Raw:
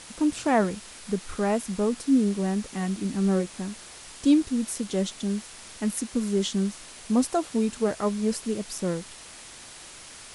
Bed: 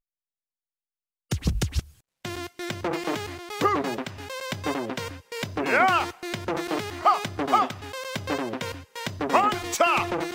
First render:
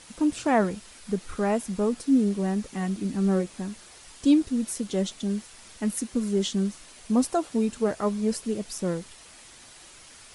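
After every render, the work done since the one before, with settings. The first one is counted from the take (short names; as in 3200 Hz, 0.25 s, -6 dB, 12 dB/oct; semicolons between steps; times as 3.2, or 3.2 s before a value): denoiser 6 dB, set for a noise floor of -45 dBFS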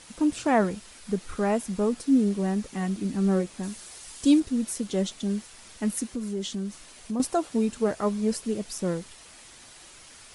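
3.63–4.4 high shelf 5500 Hz +9 dB; 6.06–7.2 compressor 2:1, threshold -32 dBFS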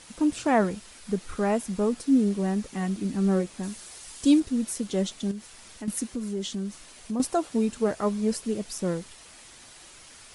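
5.31–5.88 compressor 2.5:1, threshold -36 dBFS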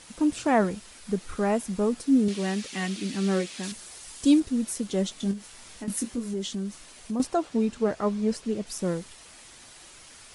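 2.28–3.72 weighting filter D; 5.14–6.34 doubler 21 ms -6 dB; 7.23–8.67 air absorption 59 m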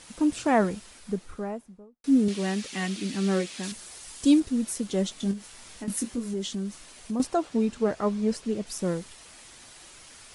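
0.74–2.04 studio fade out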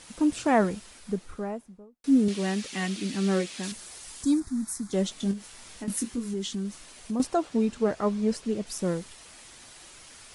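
4.23–4.93 fixed phaser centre 1200 Hz, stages 4; 5.98–6.65 bell 600 Hz -8.5 dB 0.48 oct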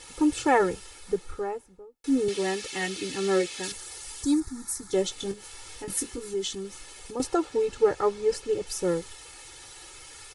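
comb 2.3 ms, depth 96%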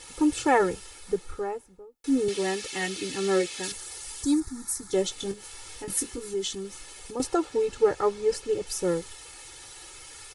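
high shelf 9500 Hz +3.5 dB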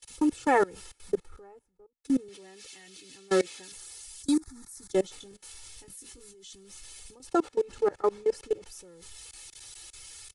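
level quantiser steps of 23 dB; three-band expander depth 40%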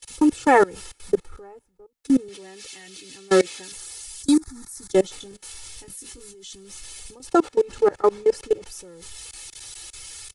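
gain +7.5 dB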